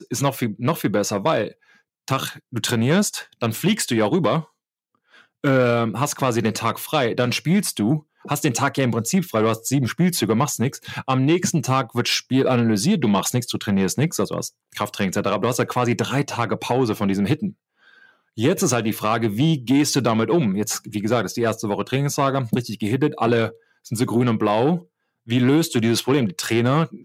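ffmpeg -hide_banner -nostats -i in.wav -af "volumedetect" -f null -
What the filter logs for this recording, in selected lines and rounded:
mean_volume: -21.2 dB
max_volume: -5.1 dB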